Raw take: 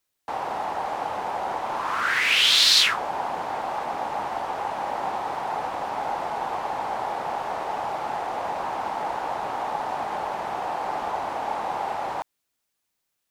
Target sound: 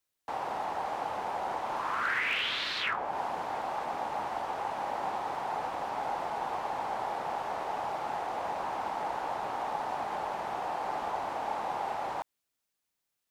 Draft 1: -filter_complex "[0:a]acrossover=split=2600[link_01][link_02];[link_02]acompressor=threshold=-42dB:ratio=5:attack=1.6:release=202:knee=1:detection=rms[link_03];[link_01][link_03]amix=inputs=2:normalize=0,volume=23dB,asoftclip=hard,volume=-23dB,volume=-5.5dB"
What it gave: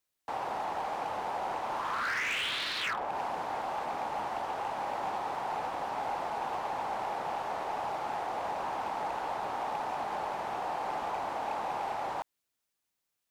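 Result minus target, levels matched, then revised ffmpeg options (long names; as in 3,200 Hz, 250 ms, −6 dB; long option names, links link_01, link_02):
gain into a clipping stage and back: distortion +19 dB
-filter_complex "[0:a]acrossover=split=2600[link_01][link_02];[link_02]acompressor=threshold=-42dB:ratio=5:attack=1.6:release=202:knee=1:detection=rms[link_03];[link_01][link_03]amix=inputs=2:normalize=0,volume=17dB,asoftclip=hard,volume=-17dB,volume=-5.5dB"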